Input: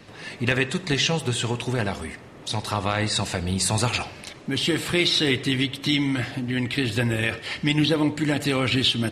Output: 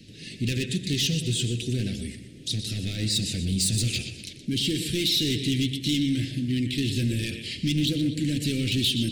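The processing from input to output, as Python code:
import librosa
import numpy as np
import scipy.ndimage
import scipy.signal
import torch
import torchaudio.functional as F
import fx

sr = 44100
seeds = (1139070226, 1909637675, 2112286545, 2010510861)

y = fx.echo_feedback(x, sr, ms=122, feedback_pct=40, wet_db=-12.0)
y = np.clip(10.0 ** (20.0 / 20.0) * y, -1.0, 1.0) / 10.0 ** (20.0 / 20.0)
y = scipy.signal.sosfilt(scipy.signal.cheby1(2, 1.0, [280.0, 3400.0], 'bandstop', fs=sr, output='sos'), y)
y = F.gain(torch.from_numpy(y), 1.0).numpy()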